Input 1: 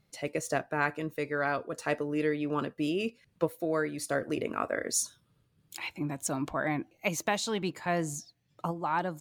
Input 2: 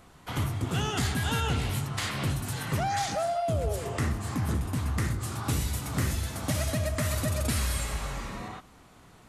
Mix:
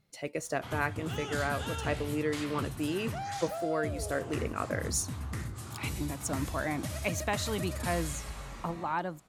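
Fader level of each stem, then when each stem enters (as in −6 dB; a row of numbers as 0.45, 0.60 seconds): −2.5, −8.5 decibels; 0.00, 0.35 seconds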